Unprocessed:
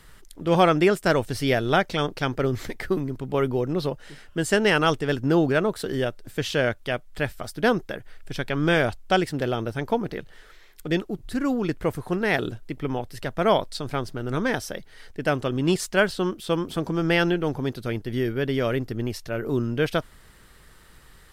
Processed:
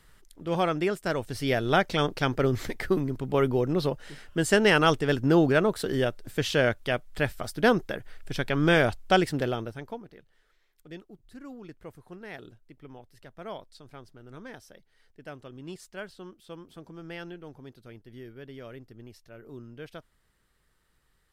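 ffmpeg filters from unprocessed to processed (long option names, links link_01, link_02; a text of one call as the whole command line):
ffmpeg -i in.wav -af "volume=-0.5dB,afade=type=in:start_time=1.15:duration=0.85:silence=0.421697,afade=type=out:start_time=9.33:duration=0.42:silence=0.334965,afade=type=out:start_time=9.75:duration=0.31:silence=0.354813" out.wav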